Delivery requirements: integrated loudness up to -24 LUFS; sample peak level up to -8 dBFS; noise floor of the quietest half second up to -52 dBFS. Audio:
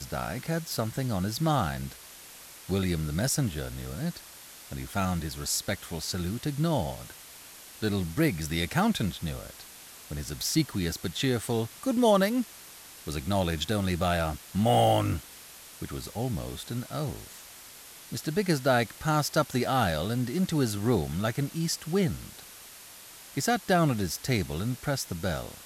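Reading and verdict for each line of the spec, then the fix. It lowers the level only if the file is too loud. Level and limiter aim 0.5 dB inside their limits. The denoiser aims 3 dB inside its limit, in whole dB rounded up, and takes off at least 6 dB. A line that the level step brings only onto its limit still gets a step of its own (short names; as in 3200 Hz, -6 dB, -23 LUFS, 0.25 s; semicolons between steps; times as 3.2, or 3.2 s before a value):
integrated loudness -29.0 LUFS: OK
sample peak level -12.5 dBFS: OK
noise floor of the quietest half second -48 dBFS: fail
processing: denoiser 7 dB, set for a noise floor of -48 dBFS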